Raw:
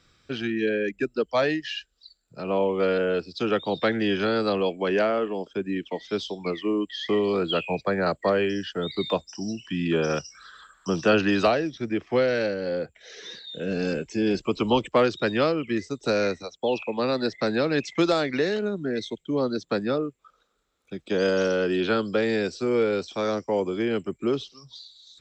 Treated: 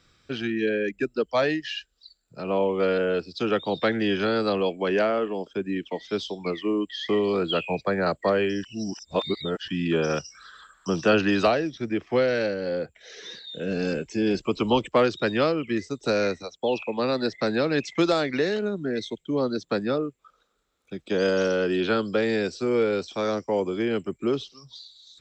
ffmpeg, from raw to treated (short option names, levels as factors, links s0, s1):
-filter_complex "[0:a]asplit=3[s0][s1][s2];[s0]atrim=end=8.642[s3];[s1]atrim=start=8.638:end=9.682,asetpts=PTS-STARTPTS,areverse[s4];[s2]atrim=start=9.678[s5];[s3][s4]acrossfade=d=0.004:c1=hsin:c2=hsin[s6];[s6][s5]acrossfade=d=0.004:c1=hsin:c2=hsin"